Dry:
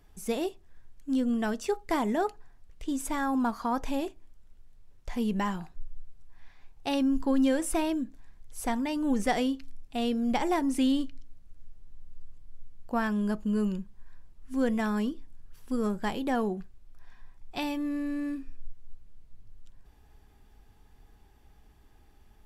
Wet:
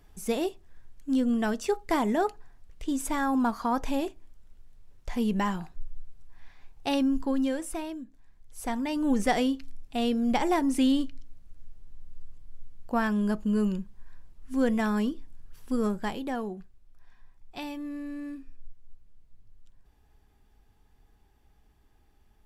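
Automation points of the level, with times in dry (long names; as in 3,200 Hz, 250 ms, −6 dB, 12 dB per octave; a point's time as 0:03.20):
0:06.93 +2 dB
0:08.04 −9 dB
0:09.02 +2 dB
0:15.83 +2 dB
0:16.43 −5 dB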